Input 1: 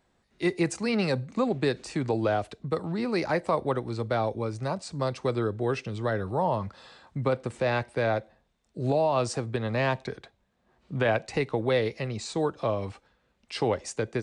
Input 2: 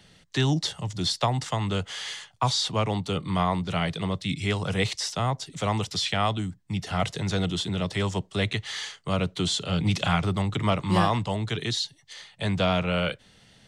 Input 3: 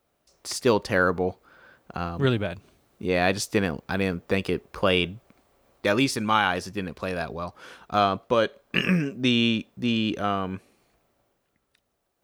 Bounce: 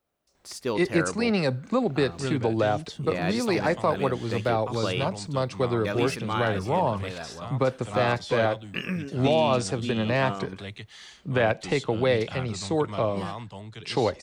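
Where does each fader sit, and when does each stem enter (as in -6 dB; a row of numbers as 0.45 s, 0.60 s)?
+2.0 dB, -12.5 dB, -8.0 dB; 0.35 s, 2.25 s, 0.00 s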